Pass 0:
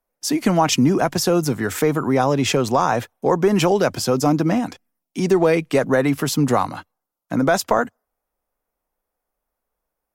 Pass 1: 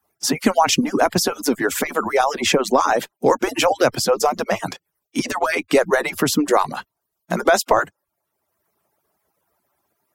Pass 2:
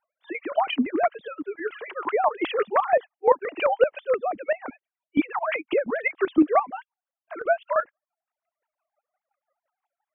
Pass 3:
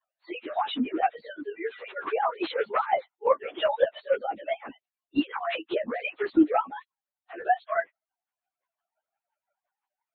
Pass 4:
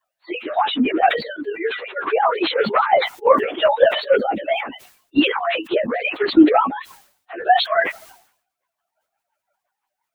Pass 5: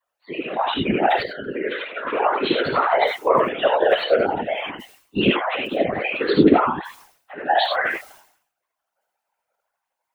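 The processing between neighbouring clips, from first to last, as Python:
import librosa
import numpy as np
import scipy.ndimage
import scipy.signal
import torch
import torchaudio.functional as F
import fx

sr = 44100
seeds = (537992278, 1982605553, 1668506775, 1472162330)

y1 = fx.hpss_only(x, sr, part='percussive')
y1 = fx.band_squash(y1, sr, depth_pct=40)
y1 = F.gain(torch.from_numpy(y1), 3.5).numpy()
y2 = fx.sine_speech(y1, sr)
y2 = fx.chopper(y2, sr, hz=5.8, depth_pct=65, duty_pct=25)
y3 = fx.partial_stretch(y2, sr, pct=108)
y4 = fx.sustainer(y3, sr, db_per_s=99.0)
y4 = F.gain(torch.from_numpy(y4), 8.5).numpy()
y5 = fx.rev_gated(y4, sr, seeds[0], gate_ms=110, shape='rising', drr_db=0.0)
y5 = fx.whisperise(y5, sr, seeds[1])
y5 = F.gain(torch.from_numpy(y5), -4.5).numpy()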